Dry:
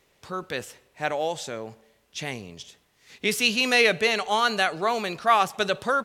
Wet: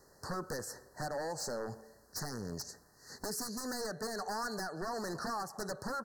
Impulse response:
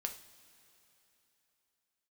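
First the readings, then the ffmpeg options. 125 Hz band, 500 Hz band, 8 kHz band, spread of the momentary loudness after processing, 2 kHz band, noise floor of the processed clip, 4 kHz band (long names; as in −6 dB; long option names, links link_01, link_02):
−5.5 dB, −13.5 dB, −6.0 dB, 7 LU, −19.0 dB, −64 dBFS, −17.5 dB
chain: -af "acompressor=threshold=-33dB:ratio=20,aeval=exprs='0.0178*(abs(mod(val(0)/0.0178+3,4)-2)-1)':channel_layout=same,asuperstop=centerf=2800:order=20:qfactor=1.2,volume=3.5dB"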